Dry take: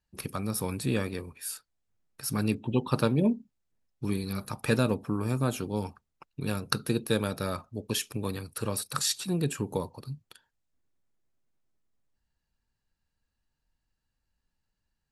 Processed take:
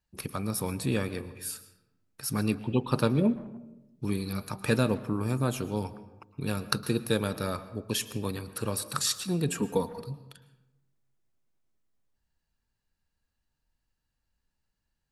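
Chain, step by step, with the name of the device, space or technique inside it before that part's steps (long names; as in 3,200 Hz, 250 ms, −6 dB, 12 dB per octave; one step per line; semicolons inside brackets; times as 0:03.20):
0:09.48–0:10.01: comb filter 4.3 ms, depth 92%
saturated reverb return (on a send at −13 dB: convolution reverb RT60 0.90 s, pre-delay 104 ms + soft clipping −24.5 dBFS, distortion −13 dB)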